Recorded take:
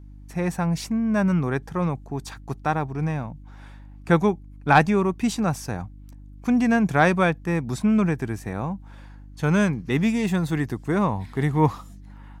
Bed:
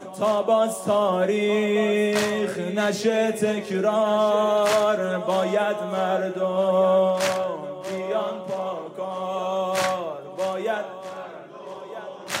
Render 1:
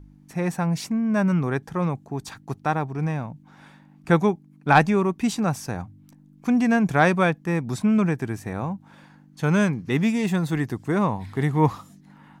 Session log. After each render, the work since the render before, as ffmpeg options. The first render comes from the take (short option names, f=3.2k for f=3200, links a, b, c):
-af "bandreject=f=50:t=h:w=4,bandreject=f=100:t=h:w=4"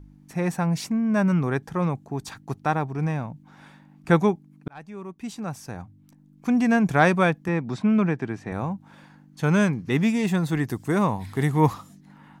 -filter_complex "[0:a]asettb=1/sr,asplit=3[a][b][c];[a]atrim=end=7.484[d];[b]atrim=start=7.48:end=8.52,asetpts=PTS-STARTPTS,afade=t=in:d=0.004:c=qsin,afade=t=out:st=1.036:d=0.004:c=qsin,highpass=130,lowpass=4.2k[e];[c]atrim=start=8.516[f];[d][e]acrossfade=d=0.004:c1=hsin:c2=qsin[g];[g][f]acrossfade=d=0.004:c1=qsin:c2=hsin,asettb=1/sr,asplit=3[h][i][j];[h]atrim=end=10.684[k];[i]atrim=start=10.68:end=11.74,asetpts=PTS-STARTPTS,afade=t=in:d=0.004:c=qsin,afade=t=out:st=1.056:d=0.004:c=qsin,highshelf=f=6.7k:g=10.5[l];[j]atrim=start=11.736[m];[k][l]acrossfade=d=0.004:c1=hsin:c2=qsin[n];[n][m]acrossfade=d=0.004:c1=qsin:c2=hsin,asplit=2[o][p];[o]atrim=end=4.68,asetpts=PTS-STARTPTS,afade=t=out:st=4.676:d=0.004:c=hsin[q];[p]atrim=start=4.68,asetpts=PTS-STARTPTS,afade=t=in:d=2.07[r];[q][r]concat=n=2:v=0:a=1"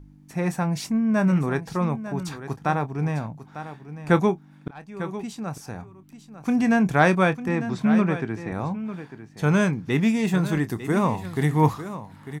-filter_complex "[0:a]asplit=2[a][b];[b]adelay=27,volume=-13dB[c];[a][c]amix=inputs=2:normalize=0,aecho=1:1:899:0.237"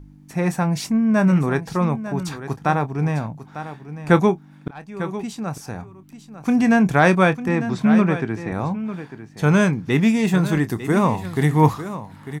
-af "volume=4dB,alimiter=limit=-3dB:level=0:latency=1"